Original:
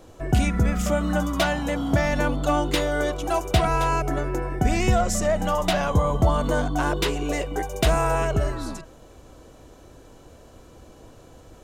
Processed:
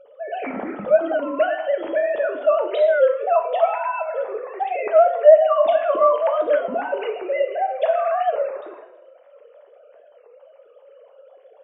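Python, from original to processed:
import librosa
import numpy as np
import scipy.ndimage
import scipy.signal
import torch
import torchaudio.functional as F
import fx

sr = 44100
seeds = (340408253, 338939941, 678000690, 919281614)

y = fx.sine_speech(x, sr)
y = fx.peak_eq(y, sr, hz=610.0, db=10.0, octaves=0.91)
y = fx.rev_plate(y, sr, seeds[0], rt60_s=0.82, hf_ratio=0.9, predelay_ms=0, drr_db=4.0)
y = fx.record_warp(y, sr, rpm=33.33, depth_cents=160.0)
y = y * librosa.db_to_amplitude(-6.5)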